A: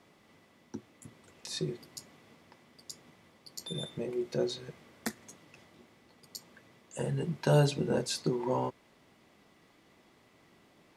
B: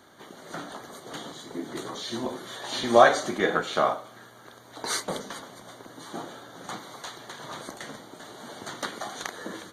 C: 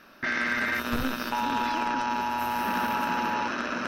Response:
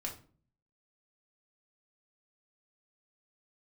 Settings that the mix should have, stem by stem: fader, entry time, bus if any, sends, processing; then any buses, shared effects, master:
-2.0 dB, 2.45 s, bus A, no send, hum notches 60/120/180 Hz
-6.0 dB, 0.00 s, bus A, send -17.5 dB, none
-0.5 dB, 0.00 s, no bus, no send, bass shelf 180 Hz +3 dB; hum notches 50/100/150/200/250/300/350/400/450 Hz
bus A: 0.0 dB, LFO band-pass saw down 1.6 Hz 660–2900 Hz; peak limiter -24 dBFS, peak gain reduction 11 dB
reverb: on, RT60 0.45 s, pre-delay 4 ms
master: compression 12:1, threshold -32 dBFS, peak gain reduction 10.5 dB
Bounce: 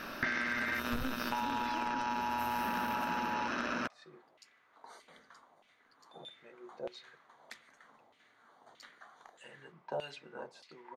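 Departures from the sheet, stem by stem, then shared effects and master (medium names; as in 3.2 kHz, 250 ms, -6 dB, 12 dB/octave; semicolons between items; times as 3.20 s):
stem B -6.0 dB -> -15.5 dB; stem C -0.5 dB -> +9.5 dB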